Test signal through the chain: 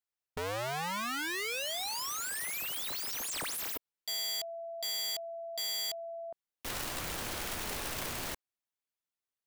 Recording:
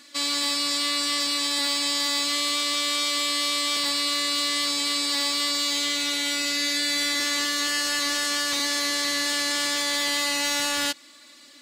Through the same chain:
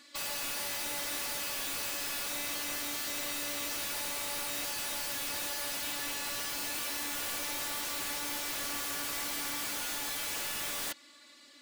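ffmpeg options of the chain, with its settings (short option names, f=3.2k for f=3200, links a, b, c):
-af "aeval=exprs='(mod(15.8*val(0)+1,2)-1)/15.8':c=same,bass=f=250:g=-3,treble=f=4k:g=-3,volume=-5.5dB"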